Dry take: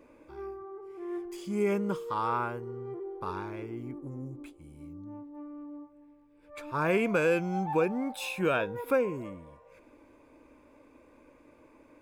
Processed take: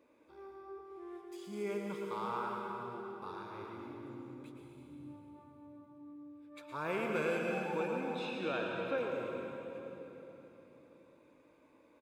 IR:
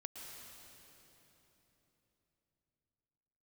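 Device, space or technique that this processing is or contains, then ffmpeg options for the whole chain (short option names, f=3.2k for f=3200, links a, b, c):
PA in a hall: -filter_complex "[0:a]asettb=1/sr,asplit=3[a][b][c];[a]atrim=end=7.964[d];[b]atrim=start=7.96:end=8.98,asetpts=PTS-STARTPTS,afade=t=in:d=0.004:c=qsin,afade=t=out:st=1.016:d=0.004:c=qsin,lowpass=4k[e];[c]atrim=start=8.976[f];[d][e]acrossfade=d=0.004:c1=hsin:c2=qsin[g];[g][f]acrossfade=d=0.004:c1=qsin:c2=hsin,highpass=f=200:p=1,equalizer=f=3.8k:t=o:w=0.29:g=8,aecho=1:1:113:0.355[h];[1:a]atrim=start_sample=2205[i];[h][i]afir=irnorm=-1:irlink=0,volume=-4dB"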